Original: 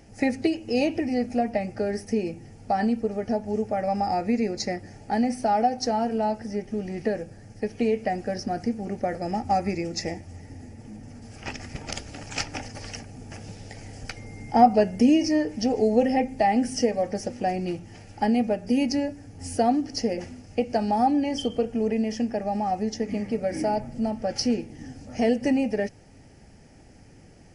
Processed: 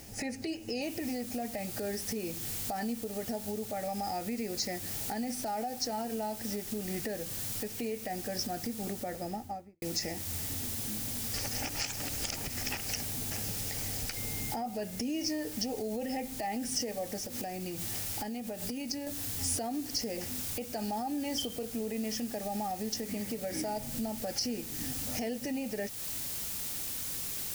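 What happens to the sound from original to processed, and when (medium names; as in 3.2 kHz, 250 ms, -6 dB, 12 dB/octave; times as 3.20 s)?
0.82 s: noise floor step -63 dB -47 dB
8.79–9.82 s: studio fade out
11.34–12.89 s: reverse
17.18–19.07 s: compression, threshold -35 dBFS
whole clip: compression 2.5:1, threshold -35 dBFS; peak limiter -28 dBFS; treble shelf 3.3 kHz +11 dB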